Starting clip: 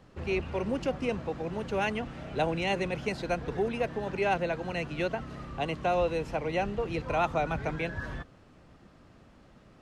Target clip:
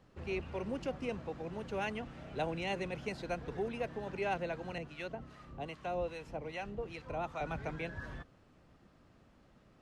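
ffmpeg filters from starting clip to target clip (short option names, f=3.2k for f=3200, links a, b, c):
-filter_complex "[0:a]asettb=1/sr,asplit=3[a][b][c];[a]atrim=end=4.784[d];[b]atrim=start=4.78:end=7.41,asetpts=PTS-STARTPTS,afade=t=in:d=0.004:c=qsin,afade=t=out:st=2.626:d=0.004:c=qsin,acrossover=split=810[e][f];[e]aeval=exprs='val(0)*(1-0.7/2+0.7/2*cos(2*PI*2.5*n/s))':c=same[g];[f]aeval=exprs='val(0)*(1-0.7/2-0.7/2*cos(2*PI*2.5*n/s))':c=same[h];[g][h]amix=inputs=2:normalize=0[i];[c]atrim=start=7.406[j];[d][i]acrossfade=d=0.004:c1=hsin:c2=qsin[k];[k][j]acrossfade=d=0.004:c1=qsin:c2=hsin,volume=-7.5dB"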